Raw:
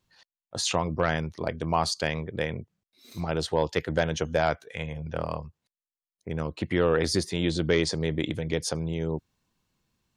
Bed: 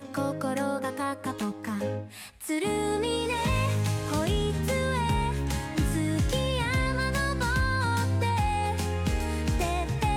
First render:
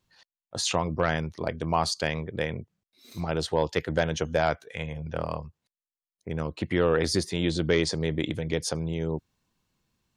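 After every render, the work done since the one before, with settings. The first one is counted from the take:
no processing that can be heard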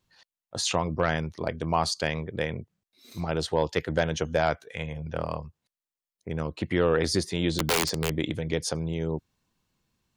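0:07.55–0:08.17: wrap-around overflow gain 17.5 dB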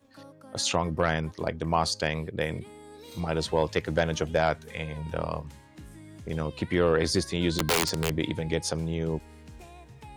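mix in bed −20 dB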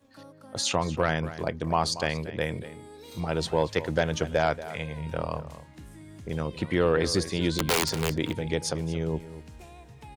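slap from a distant wall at 40 metres, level −14 dB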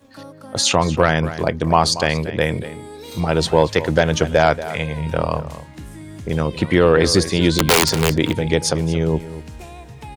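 level +10.5 dB
brickwall limiter −2 dBFS, peak gain reduction 2 dB

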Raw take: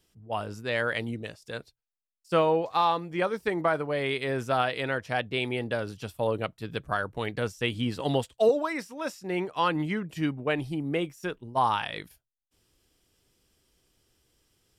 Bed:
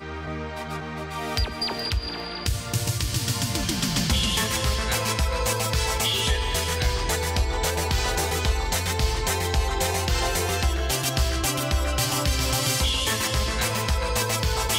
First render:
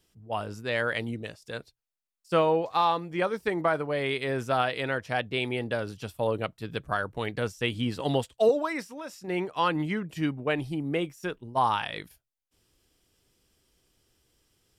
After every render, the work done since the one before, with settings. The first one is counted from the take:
0:08.84–0:09.28: downward compressor, threshold −34 dBFS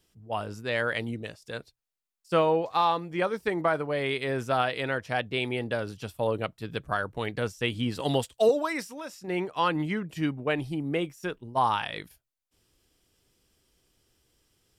0:07.95–0:09.08: high-shelf EQ 3,800 Hz +6.5 dB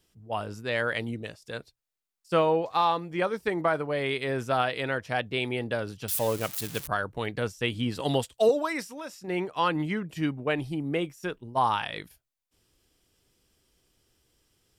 0:06.08–0:06.88: spike at every zero crossing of −24 dBFS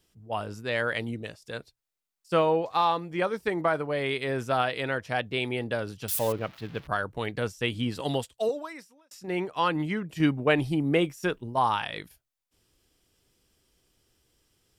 0:06.32–0:06.88: high-frequency loss of the air 330 metres
0:07.82–0:09.11: fade out
0:10.20–0:11.56: clip gain +5 dB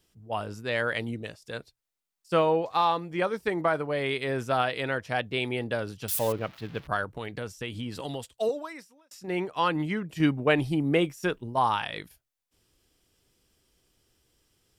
0:07.04–0:08.27: downward compressor 3 to 1, threshold −32 dBFS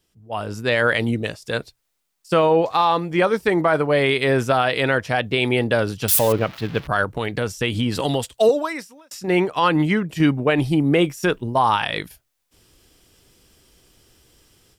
automatic gain control gain up to 13.5 dB
brickwall limiter −8 dBFS, peak gain reduction 6.5 dB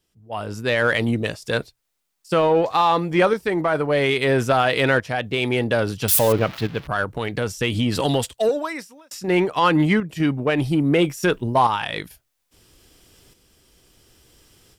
shaped tremolo saw up 0.6 Hz, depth 55%
in parallel at −6 dB: soft clipping −23 dBFS, distortion −8 dB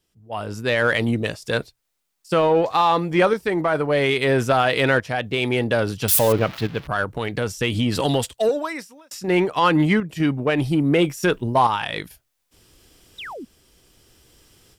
0:13.18–0:13.45: sound drawn into the spectrogram fall 210–4,100 Hz −34 dBFS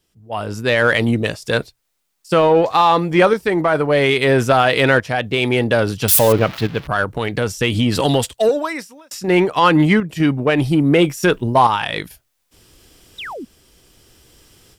level +4.5 dB

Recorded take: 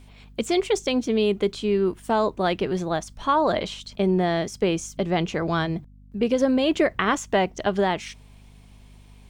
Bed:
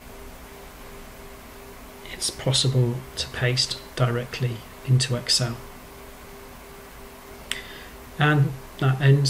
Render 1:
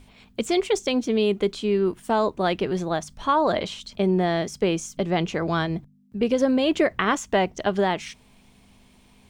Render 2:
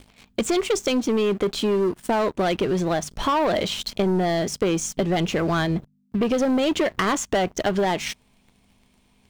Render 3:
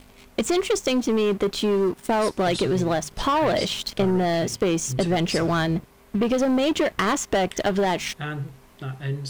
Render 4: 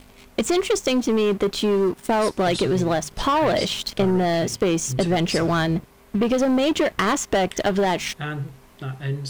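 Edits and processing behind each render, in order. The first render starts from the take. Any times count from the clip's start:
hum removal 50 Hz, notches 3
leveller curve on the samples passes 3; downward compressor 2.5 to 1, threshold −23 dBFS, peak gain reduction 8 dB
mix in bed −11.5 dB
level +1.5 dB

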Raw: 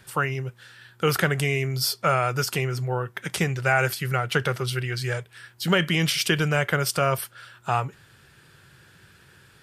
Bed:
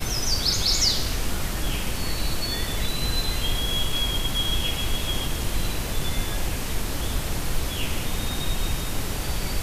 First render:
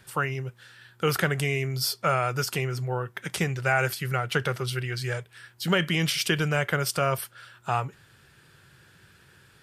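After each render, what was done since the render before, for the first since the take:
level −2.5 dB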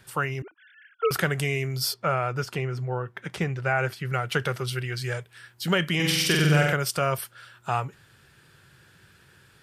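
0:00.42–0:01.11: three sine waves on the formant tracks
0:01.94–0:04.13: low-pass filter 2,100 Hz 6 dB per octave
0:05.95–0:06.73: flutter between parallel walls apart 8 metres, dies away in 1 s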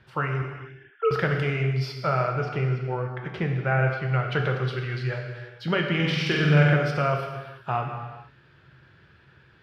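high-frequency loss of the air 270 metres
reverb whose tail is shaped and stops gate 490 ms falling, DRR 2 dB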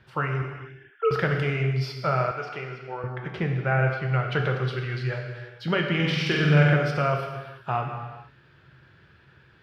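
0:02.31–0:03.04: high-pass filter 730 Hz 6 dB per octave

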